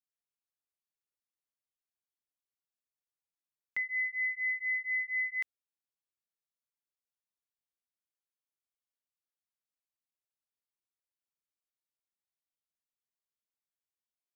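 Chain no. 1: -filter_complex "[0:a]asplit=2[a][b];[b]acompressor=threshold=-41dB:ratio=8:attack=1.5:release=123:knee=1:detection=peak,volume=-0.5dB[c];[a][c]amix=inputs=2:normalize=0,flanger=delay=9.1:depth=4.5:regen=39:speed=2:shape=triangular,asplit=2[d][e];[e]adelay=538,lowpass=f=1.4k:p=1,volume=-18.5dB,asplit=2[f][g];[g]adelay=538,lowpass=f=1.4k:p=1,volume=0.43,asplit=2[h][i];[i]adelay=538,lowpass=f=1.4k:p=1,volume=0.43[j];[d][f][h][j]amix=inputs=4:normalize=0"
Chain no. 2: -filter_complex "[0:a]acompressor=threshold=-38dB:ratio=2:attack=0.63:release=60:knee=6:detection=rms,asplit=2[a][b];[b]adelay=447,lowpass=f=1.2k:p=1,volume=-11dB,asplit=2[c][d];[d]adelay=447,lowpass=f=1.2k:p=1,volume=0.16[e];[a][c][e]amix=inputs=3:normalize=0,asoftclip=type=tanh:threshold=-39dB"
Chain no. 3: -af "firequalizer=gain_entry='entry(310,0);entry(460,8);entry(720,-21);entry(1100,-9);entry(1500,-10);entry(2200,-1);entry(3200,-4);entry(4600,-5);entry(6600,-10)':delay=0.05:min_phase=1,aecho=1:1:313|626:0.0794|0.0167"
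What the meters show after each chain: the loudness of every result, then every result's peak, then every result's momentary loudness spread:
-33.5, -40.5, -35.5 LUFS; -26.5, -39.0, -29.5 dBFS; 6, 14, 6 LU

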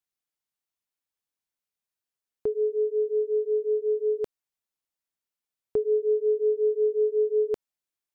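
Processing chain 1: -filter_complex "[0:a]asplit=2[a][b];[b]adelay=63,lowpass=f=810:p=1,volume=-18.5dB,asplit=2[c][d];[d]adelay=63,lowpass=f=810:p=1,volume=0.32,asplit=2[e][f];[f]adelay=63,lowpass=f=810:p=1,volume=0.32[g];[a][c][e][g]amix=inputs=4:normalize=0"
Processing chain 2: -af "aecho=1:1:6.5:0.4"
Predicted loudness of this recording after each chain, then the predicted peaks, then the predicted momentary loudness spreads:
-26.0, -25.0 LUFS; -17.5, -17.0 dBFS; 8, 8 LU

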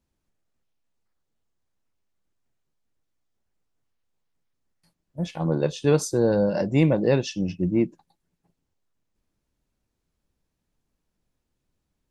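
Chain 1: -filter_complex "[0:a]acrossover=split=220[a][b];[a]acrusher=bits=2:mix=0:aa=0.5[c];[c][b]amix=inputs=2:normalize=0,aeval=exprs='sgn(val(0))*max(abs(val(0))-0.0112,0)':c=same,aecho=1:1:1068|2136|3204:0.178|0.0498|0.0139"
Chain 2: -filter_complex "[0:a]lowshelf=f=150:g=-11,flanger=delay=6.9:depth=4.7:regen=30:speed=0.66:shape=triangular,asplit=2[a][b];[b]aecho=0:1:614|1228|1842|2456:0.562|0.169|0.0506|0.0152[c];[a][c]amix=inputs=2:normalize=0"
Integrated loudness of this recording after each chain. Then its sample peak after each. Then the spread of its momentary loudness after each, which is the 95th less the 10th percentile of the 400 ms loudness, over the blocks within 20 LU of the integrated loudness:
-26.5, -29.5 LUFS; -10.5, -12.5 dBFS; 19, 17 LU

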